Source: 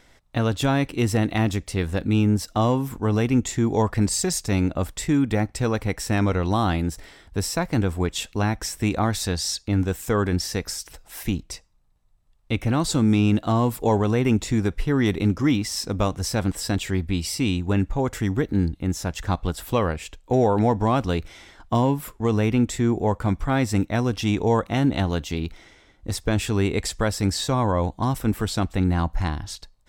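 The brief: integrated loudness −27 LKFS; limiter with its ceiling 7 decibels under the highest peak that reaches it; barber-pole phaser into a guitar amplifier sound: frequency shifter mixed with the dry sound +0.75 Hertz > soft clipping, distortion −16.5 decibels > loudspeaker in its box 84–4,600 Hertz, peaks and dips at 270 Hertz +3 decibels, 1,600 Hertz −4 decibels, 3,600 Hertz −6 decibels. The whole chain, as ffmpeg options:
ffmpeg -i in.wav -filter_complex "[0:a]alimiter=limit=-16.5dB:level=0:latency=1,asplit=2[link_01][link_02];[link_02]afreqshift=0.75[link_03];[link_01][link_03]amix=inputs=2:normalize=1,asoftclip=threshold=-23.5dB,highpass=84,equalizer=frequency=270:width_type=q:width=4:gain=3,equalizer=frequency=1600:width_type=q:width=4:gain=-4,equalizer=frequency=3600:width_type=q:width=4:gain=-6,lowpass=frequency=4600:width=0.5412,lowpass=frequency=4600:width=1.3066,volume=6dB" out.wav

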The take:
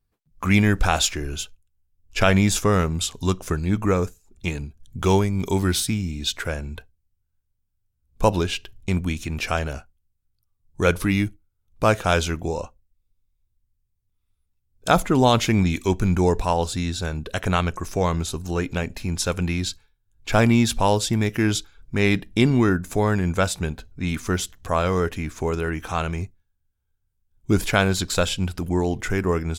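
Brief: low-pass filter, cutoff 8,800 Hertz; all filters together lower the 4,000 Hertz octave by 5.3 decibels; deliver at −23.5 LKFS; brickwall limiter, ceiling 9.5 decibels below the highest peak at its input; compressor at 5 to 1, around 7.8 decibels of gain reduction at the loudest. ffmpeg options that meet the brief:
ffmpeg -i in.wav -af "lowpass=8800,equalizer=frequency=4000:width_type=o:gain=-6.5,acompressor=threshold=-21dB:ratio=5,volume=7dB,alimiter=limit=-11.5dB:level=0:latency=1" out.wav

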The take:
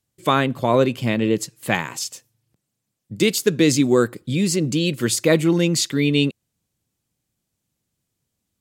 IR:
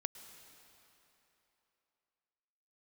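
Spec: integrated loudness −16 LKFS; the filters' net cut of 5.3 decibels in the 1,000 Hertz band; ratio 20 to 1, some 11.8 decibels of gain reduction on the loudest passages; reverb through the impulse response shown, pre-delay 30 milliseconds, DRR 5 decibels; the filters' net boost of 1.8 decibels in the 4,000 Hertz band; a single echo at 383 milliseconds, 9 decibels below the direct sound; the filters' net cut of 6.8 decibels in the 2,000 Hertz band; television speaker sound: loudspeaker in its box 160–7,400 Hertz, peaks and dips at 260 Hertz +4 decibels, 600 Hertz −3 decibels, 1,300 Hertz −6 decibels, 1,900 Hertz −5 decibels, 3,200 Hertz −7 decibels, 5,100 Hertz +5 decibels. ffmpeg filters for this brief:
-filter_complex "[0:a]equalizer=frequency=1000:width_type=o:gain=-3,equalizer=frequency=2000:width_type=o:gain=-5,equalizer=frequency=4000:width_type=o:gain=4,acompressor=threshold=-23dB:ratio=20,aecho=1:1:383:0.355,asplit=2[link_01][link_02];[1:a]atrim=start_sample=2205,adelay=30[link_03];[link_02][link_03]afir=irnorm=-1:irlink=0,volume=-3.5dB[link_04];[link_01][link_04]amix=inputs=2:normalize=0,highpass=frequency=160:width=0.5412,highpass=frequency=160:width=1.3066,equalizer=frequency=260:width_type=q:width=4:gain=4,equalizer=frequency=600:width_type=q:width=4:gain=-3,equalizer=frequency=1300:width_type=q:width=4:gain=-6,equalizer=frequency=1900:width_type=q:width=4:gain=-5,equalizer=frequency=3200:width_type=q:width=4:gain=-7,equalizer=frequency=5100:width_type=q:width=4:gain=5,lowpass=frequency=7400:width=0.5412,lowpass=frequency=7400:width=1.3066,volume=11.5dB"

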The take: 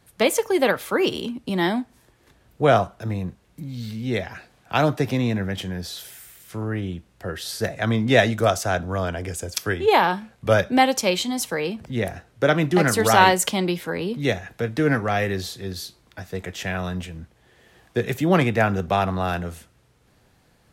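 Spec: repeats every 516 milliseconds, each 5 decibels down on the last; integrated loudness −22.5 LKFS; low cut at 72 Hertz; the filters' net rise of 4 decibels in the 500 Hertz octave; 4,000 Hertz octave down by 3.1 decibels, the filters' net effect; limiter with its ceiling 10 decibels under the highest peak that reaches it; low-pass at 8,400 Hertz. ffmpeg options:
ffmpeg -i in.wav -af "highpass=72,lowpass=8400,equalizer=frequency=500:width_type=o:gain=5,equalizer=frequency=4000:width_type=o:gain=-4,alimiter=limit=-11.5dB:level=0:latency=1,aecho=1:1:516|1032|1548|2064|2580|3096|3612:0.562|0.315|0.176|0.0988|0.0553|0.031|0.0173,volume=0.5dB" out.wav

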